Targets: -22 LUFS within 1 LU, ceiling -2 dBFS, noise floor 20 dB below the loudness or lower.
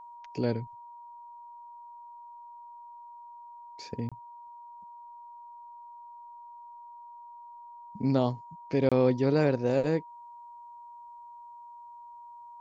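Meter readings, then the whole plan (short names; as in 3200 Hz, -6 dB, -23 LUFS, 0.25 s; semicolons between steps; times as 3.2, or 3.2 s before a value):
dropouts 2; longest dropout 26 ms; steady tone 950 Hz; tone level -45 dBFS; loudness -28.5 LUFS; peak -12.0 dBFS; loudness target -22.0 LUFS
-> interpolate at 4.09/8.89, 26 ms; notch 950 Hz, Q 30; gain +6.5 dB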